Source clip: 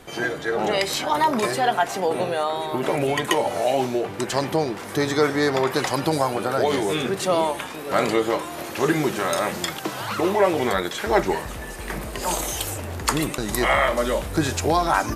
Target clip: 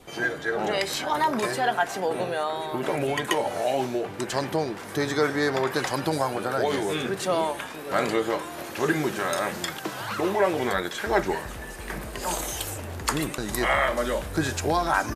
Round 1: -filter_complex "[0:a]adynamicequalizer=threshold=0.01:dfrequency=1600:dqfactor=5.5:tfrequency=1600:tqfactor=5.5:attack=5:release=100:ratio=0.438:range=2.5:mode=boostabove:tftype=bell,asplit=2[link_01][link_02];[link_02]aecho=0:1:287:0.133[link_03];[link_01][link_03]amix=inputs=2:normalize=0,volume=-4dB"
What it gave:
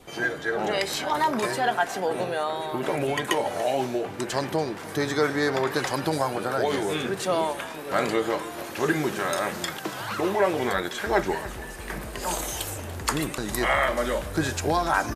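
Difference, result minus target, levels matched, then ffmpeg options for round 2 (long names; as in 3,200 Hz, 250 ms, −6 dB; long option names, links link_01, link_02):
echo-to-direct +11.5 dB
-filter_complex "[0:a]adynamicequalizer=threshold=0.01:dfrequency=1600:dqfactor=5.5:tfrequency=1600:tqfactor=5.5:attack=5:release=100:ratio=0.438:range=2.5:mode=boostabove:tftype=bell,asplit=2[link_01][link_02];[link_02]aecho=0:1:287:0.0355[link_03];[link_01][link_03]amix=inputs=2:normalize=0,volume=-4dB"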